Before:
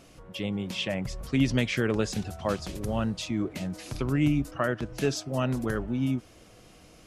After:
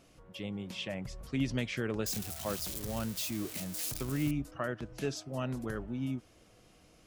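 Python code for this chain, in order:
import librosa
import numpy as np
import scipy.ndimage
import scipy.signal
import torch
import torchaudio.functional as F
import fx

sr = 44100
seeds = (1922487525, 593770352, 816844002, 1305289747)

y = fx.crossing_spikes(x, sr, level_db=-21.5, at=(2.06, 4.31))
y = y * 10.0 ** (-8.0 / 20.0)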